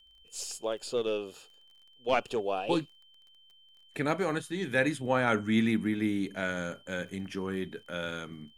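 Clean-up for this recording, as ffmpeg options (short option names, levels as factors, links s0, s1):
-af "adeclick=t=4,bandreject=f=3100:w=30"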